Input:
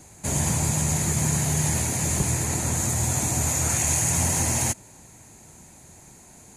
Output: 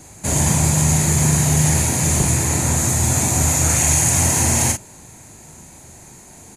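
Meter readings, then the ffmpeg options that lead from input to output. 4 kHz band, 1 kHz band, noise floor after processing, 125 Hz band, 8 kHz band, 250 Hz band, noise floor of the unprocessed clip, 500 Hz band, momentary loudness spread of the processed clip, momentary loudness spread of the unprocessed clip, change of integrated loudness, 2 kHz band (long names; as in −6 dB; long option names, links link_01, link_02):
+6.5 dB, +6.5 dB, −43 dBFS, +7.5 dB, +6.5 dB, +7.5 dB, −50 dBFS, +6.5 dB, 3 LU, 4 LU, +7.0 dB, +7.0 dB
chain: -filter_complex "[0:a]asplit=2[link_01][link_02];[link_02]adelay=39,volume=-5dB[link_03];[link_01][link_03]amix=inputs=2:normalize=0,volume=5.5dB"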